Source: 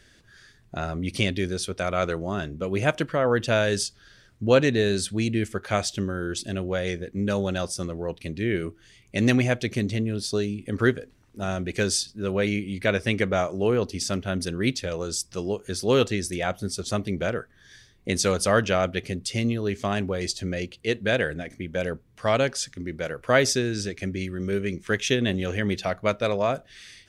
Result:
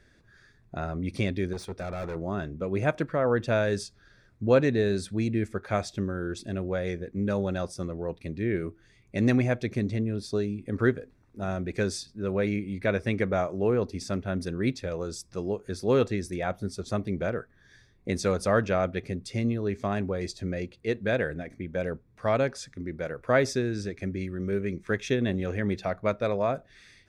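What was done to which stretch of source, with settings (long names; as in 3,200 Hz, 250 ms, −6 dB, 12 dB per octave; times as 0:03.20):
0:01.53–0:02.16: gain into a clipping stage and back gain 28.5 dB
whole clip: high-shelf EQ 2,900 Hz −11.5 dB; notch filter 3,000 Hz, Q 5.6; level −2 dB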